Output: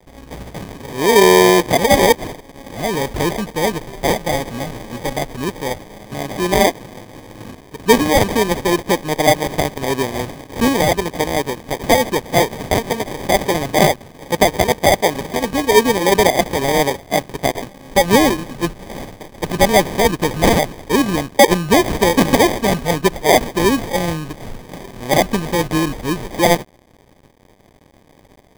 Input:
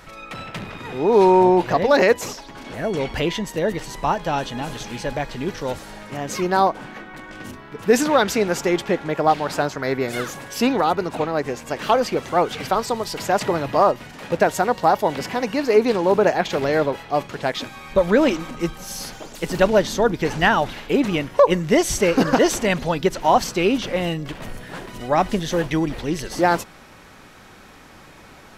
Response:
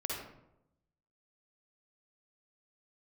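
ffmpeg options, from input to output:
-af "acrusher=samples=32:mix=1:aa=0.000001,aeval=exprs='sgn(val(0))*max(abs(val(0))-0.00562,0)':c=same,volume=1.58"

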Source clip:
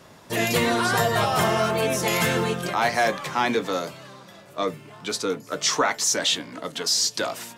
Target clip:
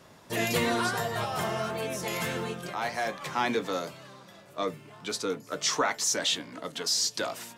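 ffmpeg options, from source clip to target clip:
-filter_complex "[0:a]asplit=3[s0][s1][s2];[s0]afade=t=out:st=0.89:d=0.02[s3];[s1]flanger=delay=8.3:depth=7:regen=84:speed=1.6:shape=sinusoidal,afade=t=in:st=0.89:d=0.02,afade=t=out:st=3.2:d=0.02[s4];[s2]afade=t=in:st=3.2:d=0.02[s5];[s3][s4][s5]amix=inputs=3:normalize=0,volume=0.562"

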